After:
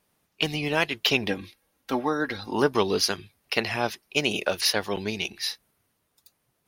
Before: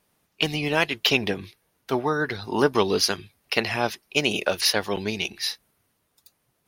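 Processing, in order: 1.28–2.53 comb 3.7 ms, depth 57%; gain -2 dB

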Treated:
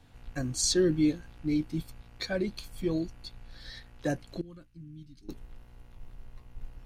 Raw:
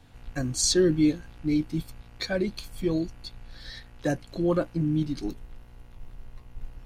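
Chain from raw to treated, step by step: 4.41–5.29 passive tone stack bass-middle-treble 6-0-2; gain -3.5 dB

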